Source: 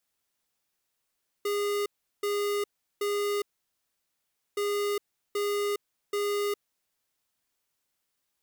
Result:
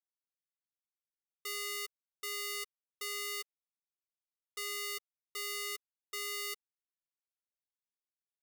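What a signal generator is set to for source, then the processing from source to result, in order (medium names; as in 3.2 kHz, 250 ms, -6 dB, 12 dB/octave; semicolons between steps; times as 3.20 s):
beep pattern square 409 Hz, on 0.41 s, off 0.37 s, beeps 3, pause 1.15 s, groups 2, -28.5 dBFS
amplifier tone stack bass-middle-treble 10-0-10; comb 6.9 ms, depth 36%; bit crusher 11-bit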